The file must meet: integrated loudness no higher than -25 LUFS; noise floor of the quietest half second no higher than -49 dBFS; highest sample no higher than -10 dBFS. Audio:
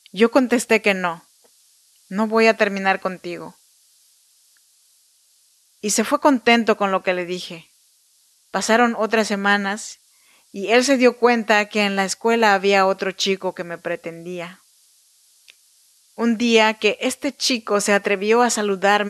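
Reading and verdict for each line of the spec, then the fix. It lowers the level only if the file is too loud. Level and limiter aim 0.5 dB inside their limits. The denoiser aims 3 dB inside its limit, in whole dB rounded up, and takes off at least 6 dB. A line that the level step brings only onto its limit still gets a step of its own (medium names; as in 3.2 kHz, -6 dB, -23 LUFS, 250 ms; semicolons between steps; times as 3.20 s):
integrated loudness -18.5 LUFS: fail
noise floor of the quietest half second -59 dBFS: pass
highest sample -2.5 dBFS: fail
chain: trim -7 dB; peak limiter -10.5 dBFS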